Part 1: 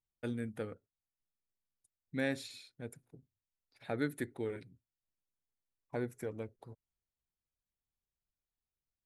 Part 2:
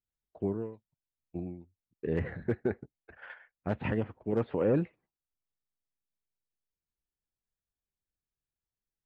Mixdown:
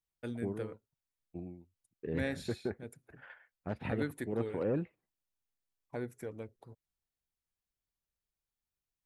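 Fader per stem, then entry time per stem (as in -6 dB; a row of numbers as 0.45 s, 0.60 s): -2.0 dB, -6.0 dB; 0.00 s, 0.00 s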